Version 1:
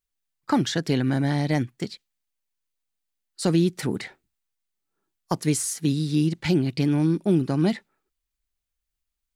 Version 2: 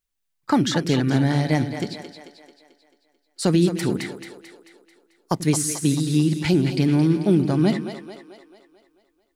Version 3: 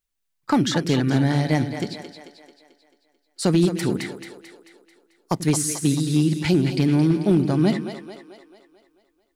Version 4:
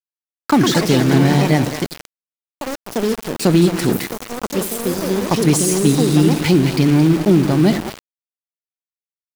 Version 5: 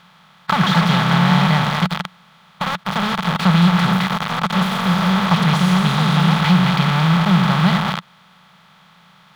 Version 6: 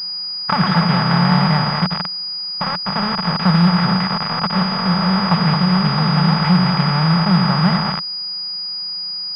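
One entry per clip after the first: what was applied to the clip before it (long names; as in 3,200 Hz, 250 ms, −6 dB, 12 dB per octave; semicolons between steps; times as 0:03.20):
echo with a time of its own for lows and highs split 350 Hz, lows 87 ms, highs 220 ms, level −9 dB; level +2.5 dB
hard clipping −10.5 dBFS, distortion −28 dB
delay with pitch and tempo change per echo 218 ms, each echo +4 semitones, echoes 2, each echo −6 dB; centre clipping without the shift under −27 dBFS; level +5.5 dB
compressor on every frequency bin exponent 0.4; drawn EQ curve 120 Hz 0 dB, 180 Hz +13 dB, 290 Hz −19 dB, 630 Hz +2 dB, 1,300 Hz +14 dB, 1,900 Hz +7 dB, 3,500 Hz +9 dB, 8,600 Hz −14 dB, 14,000 Hz −8 dB; level −11 dB
switching amplifier with a slow clock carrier 4,900 Hz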